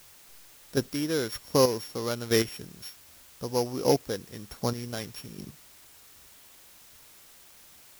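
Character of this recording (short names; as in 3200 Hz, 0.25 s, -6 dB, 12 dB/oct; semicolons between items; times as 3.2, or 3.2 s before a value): a buzz of ramps at a fixed pitch in blocks of 8 samples; chopped level 1.3 Hz, depth 60%, duty 15%; a quantiser's noise floor 10-bit, dither triangular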